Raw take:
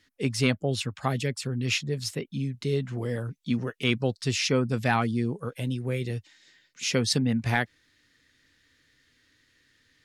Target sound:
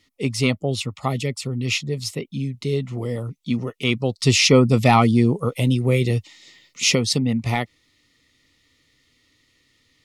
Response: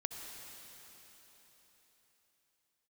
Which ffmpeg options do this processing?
-filter_complex "[0:a]asplit=3[s0][s1][s2];[s0]afade=t=out:st=4.19:d=0.02[s3];[s1]acontrast=81,afade=t=in:st=4.19:d=0.02,afade=t=out:st=6.94:d=0.02[s4];[s2]afade=t=in:st=6.94:d=0.02[s5];[s3][s4][s5]amix=inputs=3:normalize=0,asuperstop=centerf=1600:order=4:qfactor=3.1,volume=1.58"

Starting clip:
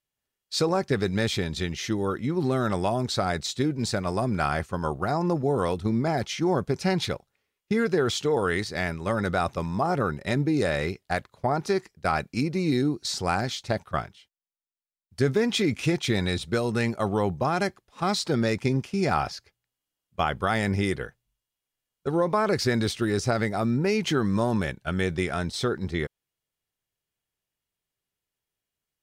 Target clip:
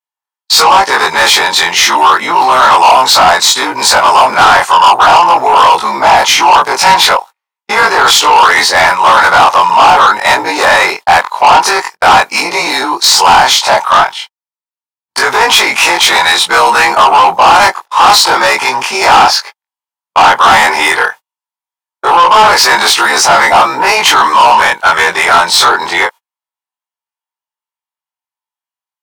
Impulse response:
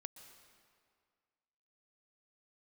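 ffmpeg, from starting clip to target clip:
-filter_complex "[0:a]afftfilt=real='re':imag='-im':win_size=2048:overlap=0.75,apsyclip=37.6,asplit=2[s0][s1];[s1]acompressor=threshold=0.251:ratio=6,volume=0.891[s2];[s0][s2]amix=inputs=2:normalize=0,highpass=f=920:t=q:w=6.2,asoftclip=type=tanh:threshold=0.944,agate=range=0.0126:threshold=0.0794:ratio=16:detection=peak,volume=0.891"

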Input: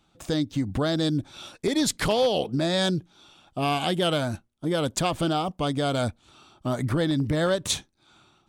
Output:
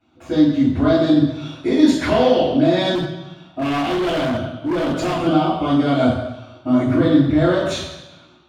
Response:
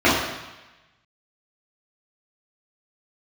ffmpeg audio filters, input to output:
-filter_complex "[1:a]atrim=start_sample=2205[s0];[0:a][s0]afir=irnorm=-1:irlink=0,asettb=1/sr,asplit=3[s1][s2][s3];[s1]atrim=end=2.954[s4];[s2]atrim=start=2.95:end=5.27,asetpts=PTS-STARTPTS,afade=t=in:d=0.004:c=qsin,afade=t=out:st=2.316:d=0.004:c=qsin,volume=0.944,asoftclip=hard,volume=1.06[s5];[s3]atrim=start=5.266[s6];[s4][s5]acrossfade=d=0.004:c1=hsin:c2=qsin[s7];[s7][s6]acrossfade=d=0.004:c1=qsin:c2=hsin,volume=0.126"

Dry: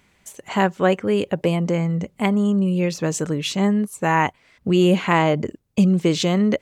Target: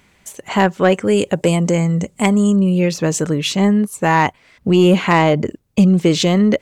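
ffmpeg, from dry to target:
-filter_complex "[0:a]asoftclip=type=tanh:threshold=0.422,asettb=1/sr,asplit=3[s0][s1][s2];[s0]atrim=end=0.944[s3];[s1]atrim=start=0.94:end=2.56,asetpts=PTS-STARTPTS,afade=t=in:d=0.004:c=qsin,afade=t=out:st=1.616:d=0.004:c=qsin,equalizer=f=7800:t=o:w=0.76:g=13.5[s4];[s2]atrim=start=2.556[s5];[s3][s4]acrossfade=d=0.004:c1=hsin:c2=qsin[s6];[s6][s5]acrossfade=d=0.004:c1=qsin:c2=hsin,volume=1.88"

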